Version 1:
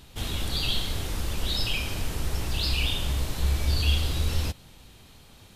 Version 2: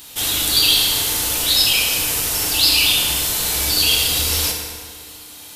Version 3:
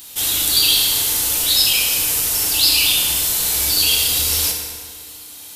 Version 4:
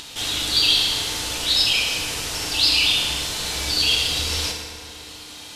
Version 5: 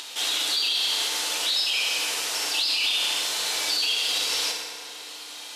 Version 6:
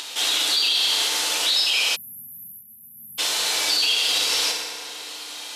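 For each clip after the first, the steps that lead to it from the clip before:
RIAA curve recording; FDN reverb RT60 2 s, low-frequency decay 1×, high-frequency decay 0.65×, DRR 0 dB; trim +6.5 dB
treble shelf 4.7 kHz +7 dB; trim -3.5 dB
low-pass 4.9 kHz 12 dB/octave; upward compressor, threshold -31 dBFS
high-pass 490 Hz 12 dB/octave; peak limiter -15.5 dBFS, peak gain reduction 10.5 dB
spectral selection erased 1.96–3.19 s, 240–11000 Hz; trim +4 dB

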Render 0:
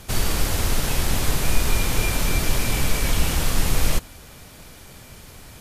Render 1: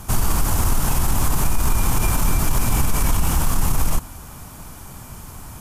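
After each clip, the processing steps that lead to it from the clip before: in parallel at -8 dB: saturation -23 dBFS, distortion -7 dB; on the sum: graphic EQ 500/1000/2000/4000 Hz -9/+6/-8/-10 dB; loudness maximiser +12.5 dB; trim -8 dB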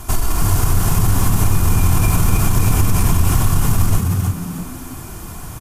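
comb 2.9 ms, depth 51%; compression 3:1, threshold -15 dBFS, peak gain reduction 5.5 dB; on a send: frequency-shifting echo 315 ms, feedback 33%, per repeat +81 Hz, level -4 dB; on the sum: trim +2.5 dB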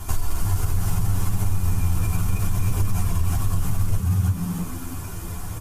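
compression 6:1, threshold -19 dBFS, peak gain reduction 10.5 dB; chorus voices 6, 0.66 Hz, delay 11 ms, depth 1.3 ms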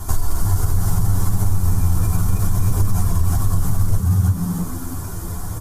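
peaking EQ 2.6 kHz -12.5 dB 0.68 oct; trim +4.5 dB

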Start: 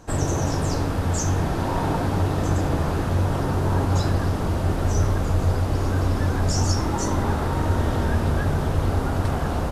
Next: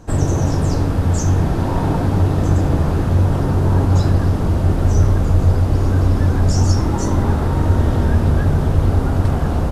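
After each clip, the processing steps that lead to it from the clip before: bass shelf 420 Hz +8 dB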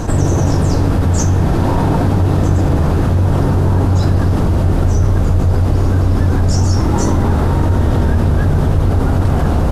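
level flattener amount 70%; trim -1.5 dB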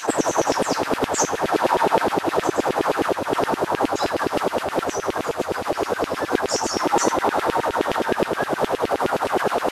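LFO high-pass saw down 9.6 Hz 340–3000 Hz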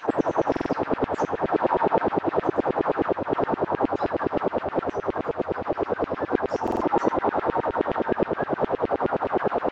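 tape spacing loss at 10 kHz 43 dB; buffer glitch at 0.51/6.63 s, samples 2048, times 3

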